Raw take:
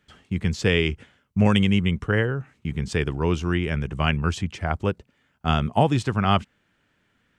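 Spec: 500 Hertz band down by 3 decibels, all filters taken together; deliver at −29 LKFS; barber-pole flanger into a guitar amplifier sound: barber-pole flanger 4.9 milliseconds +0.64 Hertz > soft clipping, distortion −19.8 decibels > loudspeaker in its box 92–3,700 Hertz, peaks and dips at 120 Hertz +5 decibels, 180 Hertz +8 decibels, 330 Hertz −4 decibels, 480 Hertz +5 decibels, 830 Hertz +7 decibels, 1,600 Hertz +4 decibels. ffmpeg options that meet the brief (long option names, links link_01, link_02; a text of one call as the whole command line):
ffmpeg -i in.wav -filter_complex "[0:a]equalizer=frequency=500:width_type=o:gain=-7,asplit=2[link_01][link_02];[link_02]adelay=4.9,afreqshift=0.64[link_03];[link_01][link_03]amix=inputs=2:normalize=1,asoftclip=threshold=-15.5dB,highpass=92,equalizer=frequency=120:width_type=q:width=4:gain=5,equalizer=frequency=180:width_type=q:width=4:gain=8,equalizer=frequency=330:width_type=q:width=4:gain=-4,equalizer=frequency=480:width_type=q:width=4:gain=5,equalizer=frequency=830:width_type=q:width=4:gain=7,equalizer=frequency=1600:width_type=q:width=4:gain=4,lowpass=frequency=3700:width=0.5412,lowpass=frequency=3700:width=1.3066,volume=-2dB" out.wav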